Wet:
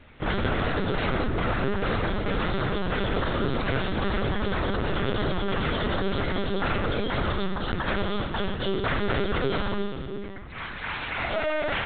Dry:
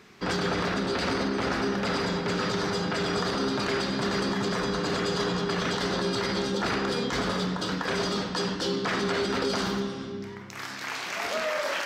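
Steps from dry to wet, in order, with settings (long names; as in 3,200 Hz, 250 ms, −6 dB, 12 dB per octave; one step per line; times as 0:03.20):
linear-prediction vocoder at 8 kHz pitch kept
level +2.5 dB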